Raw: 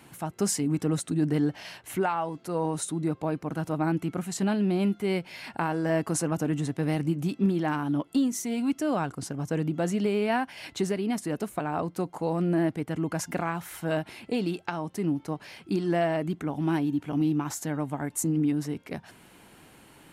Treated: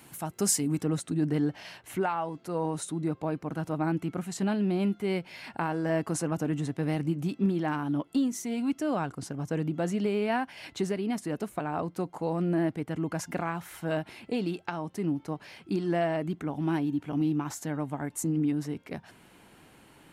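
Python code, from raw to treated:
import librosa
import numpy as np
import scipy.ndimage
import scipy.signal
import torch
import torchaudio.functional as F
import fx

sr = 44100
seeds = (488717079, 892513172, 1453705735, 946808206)

y = fx.high_shelf(x, sr, hz=6000.0, db=fx.steps((0.0, 8.5), (0.81, -4.0)))
y = y * 10.0 ** (-2.0 / 20.0)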